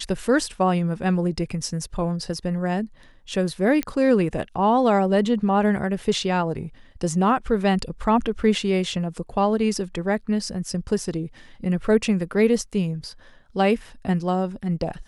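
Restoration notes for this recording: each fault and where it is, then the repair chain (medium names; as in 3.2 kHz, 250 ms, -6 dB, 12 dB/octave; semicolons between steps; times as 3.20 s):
3.83 s: pop -11 dBFS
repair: de-click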